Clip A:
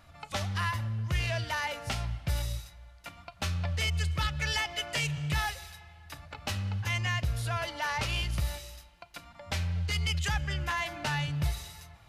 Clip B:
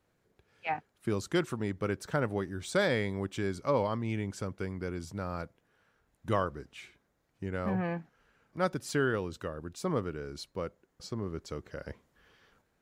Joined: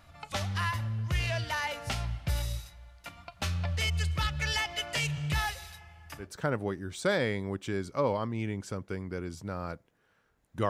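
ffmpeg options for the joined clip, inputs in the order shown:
-filter_complex "[0:a]asettb=1/sr,asplit=3[s0][s1][s2];[s0]atrim=end=5.784[s3];[s1]atrim=start=5.78:end=6.34,asetpts=PTS-STARTPTS,afade=t=in:d=0.004:c=qsin,afade=t=out:st=0.556:d=0.004:c=qsin,equalizer=f=3900:w=6.6:g=-11.5[s4];[s2]atrim=start=6.336[s5];[s3][s4]acrossfade=d=0.004:c1=hsin:c2=qsin[s6];[s6][s5]acrossfade=d=0.004:c1=qsin:c2=hsin,apad=whole_dur=10.69,atrim=end=10.69,atrim=end=6.34,asetpts=PTS-STARTPTS[s7];[1:a]atrim=start=1.86:end=6.39,asetpts=PTS-STARTPTS[s8];[s7][s8]acrossfade=d=0.18:c1=tri:c2=tri"

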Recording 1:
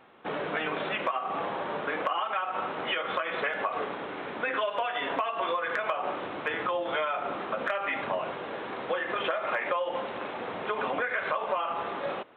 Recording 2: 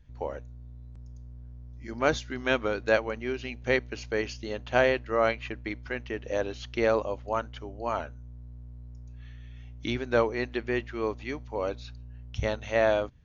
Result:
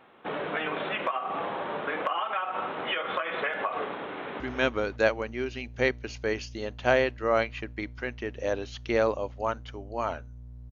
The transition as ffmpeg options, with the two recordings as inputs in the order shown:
-filter_complex "[0:a]apad=whole_dur=10.71,atrim=end=10.71,atrim=end=4.402[s0];[1:a]atrim=start=2.278:end=8.59[s1];[s0][s1]acrossfade=d=0.004:c1=hsin:c2=hsin,asplit=2[s2][s3];[s3]afade=t=in:st=4.06:d=0.01,afade=t=out:st=4.4:d=0.01,aecho=0:1:280|560|840:0.562341|0.112468|0.0224937[s4];[s2][s4]amix=inputs=2:normalize=0"

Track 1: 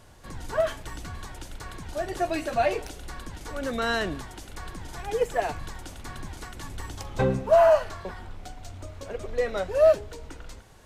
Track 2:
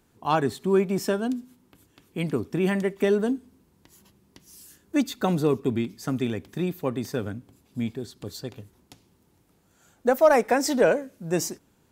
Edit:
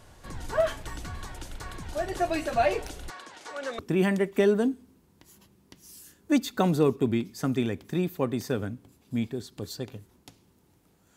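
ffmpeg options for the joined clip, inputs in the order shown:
-filter_complex "[0:a]asettb=1/sr,asplit=3[s0][s1][s2];[s0]atrim=end=3.104[s3];[s1]atrim=start=3.1:end=3.79,asetpts=PTS-STARTPTS,afade=t=in:d=0.004:c=qsin,afade=t=out:st=0.686:d=0.004:c=qsin,highpass=490,lowpass=7400[s4];[s2]atrim=start=3.786[s5];[s3][s4]acrossfade=d=0.004:c1=hsin:c2=qsin[s6];[s6][s5]acrossfade=d=0.004:c1=qsin:c2=hsin,apad=whole_dur=11.16,atrim=end=11.16,atrim=end=3.792[s7];[1:a]atrim=start=2.428:end=9.8[s8];[s7][s8]acrossfade=d=0.004:c1=hsin:c2=hsin"

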